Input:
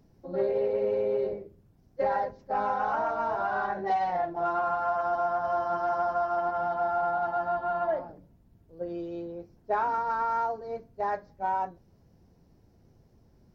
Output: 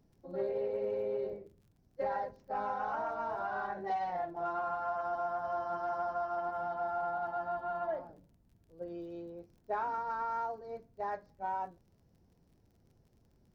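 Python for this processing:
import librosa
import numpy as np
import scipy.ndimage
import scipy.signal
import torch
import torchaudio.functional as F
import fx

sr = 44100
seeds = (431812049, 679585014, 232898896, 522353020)

y = fx.dmg_crackle(x, sr, seeds[0], per_s=42.0, level_db=-51.0)
y = y * 10.0 ** (-7.5 / 20.0)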